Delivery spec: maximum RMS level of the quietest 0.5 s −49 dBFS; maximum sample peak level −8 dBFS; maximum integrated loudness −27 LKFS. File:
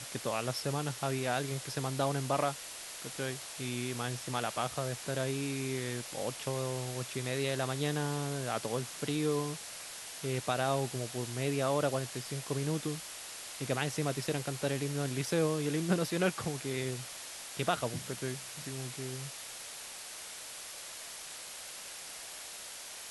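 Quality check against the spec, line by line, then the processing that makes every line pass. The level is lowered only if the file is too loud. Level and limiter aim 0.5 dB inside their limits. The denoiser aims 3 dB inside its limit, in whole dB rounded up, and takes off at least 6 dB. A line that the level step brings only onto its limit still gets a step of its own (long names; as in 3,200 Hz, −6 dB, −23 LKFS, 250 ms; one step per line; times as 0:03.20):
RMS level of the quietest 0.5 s −46 dBFS: out of spec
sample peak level −16.0 dBFS: in spec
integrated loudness −35.5 LKFS: in spec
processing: broadband denoise 6 dB, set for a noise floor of −46 dBFS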